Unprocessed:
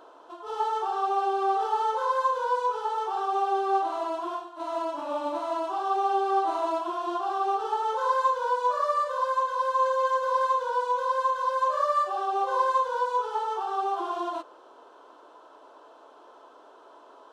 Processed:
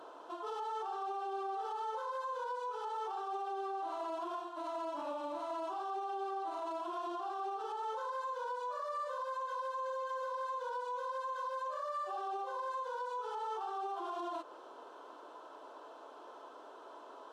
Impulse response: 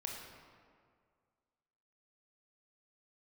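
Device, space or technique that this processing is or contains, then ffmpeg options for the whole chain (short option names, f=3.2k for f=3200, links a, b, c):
podcast mastering chain: -af "highpass=f=85:w=0.5412,highpass=f=85:w=1.3066,acompressor=threshold=-35dB:ratio=3,alimiter=level_in=8dB:limit=-24dB:level=0:latency=1:release=44,volume=-8dB" -ar 48000 -c:a libmp3lame -b:a 96k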